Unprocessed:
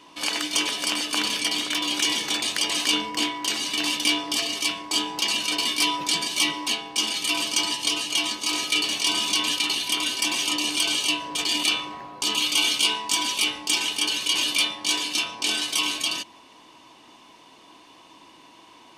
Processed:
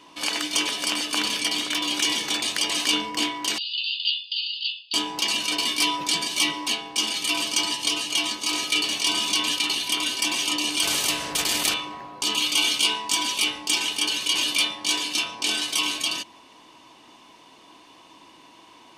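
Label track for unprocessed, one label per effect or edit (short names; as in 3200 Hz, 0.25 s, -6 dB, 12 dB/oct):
3.580000	4.940000	brick-wall FIR band-pass 2500–5000 Hz
10.830000	11.740000	spectral compressor 2:1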